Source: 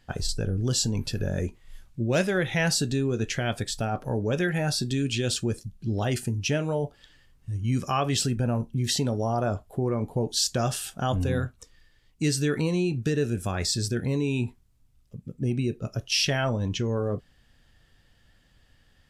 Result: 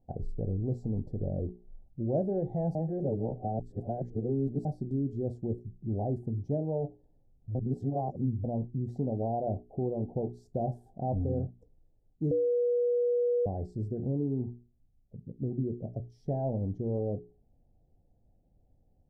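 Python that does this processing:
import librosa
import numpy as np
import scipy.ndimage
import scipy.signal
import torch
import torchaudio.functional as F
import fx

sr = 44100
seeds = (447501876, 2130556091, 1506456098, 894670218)

y = fx.edit(x, sr, fx.reverse_span(start_s=2.75, length_s=1.9),
    fx.reverse_span(start_s=7.55, length_s=0.89),
    fx.bleep(start_s=12.31, length_s=1.15, hz=484.0, db=-20.0), tone=tone)
y = scipy.signal.sosfilt(scipy.signal.ellip(4, 1.0, 40, 770.0, 'lowpass', fs=sr, output='sos'), y)
y = fx.hum_notches(y, sr, base_hz=60, count=7)
y = y * librosa.db_to_amplitude(-3.5)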